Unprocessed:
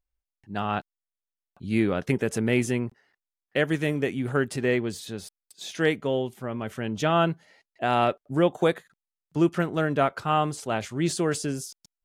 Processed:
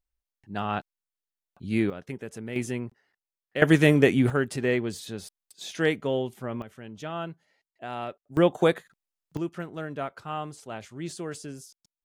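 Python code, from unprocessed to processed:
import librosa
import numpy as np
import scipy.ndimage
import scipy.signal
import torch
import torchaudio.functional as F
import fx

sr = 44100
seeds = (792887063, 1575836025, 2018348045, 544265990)

y = fx.gain(x, sr, db=fx.steps((0.0, -1.5), (1.9, -12.0), (2.56, -5.0), (3.62, 7.5), (4.3, -1.0), (6.62, -12.0), (8.37, 1.0), (9.37, -10.0)))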